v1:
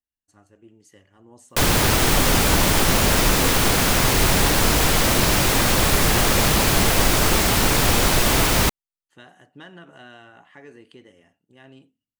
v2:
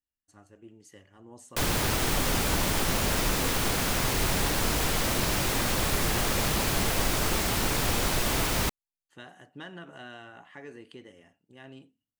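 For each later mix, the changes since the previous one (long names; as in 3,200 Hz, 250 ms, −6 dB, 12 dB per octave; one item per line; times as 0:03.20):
background −9.0 dB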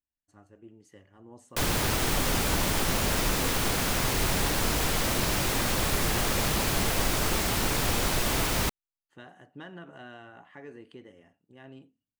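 speech: add high-shelf EQ 2,600 Hz −9 dB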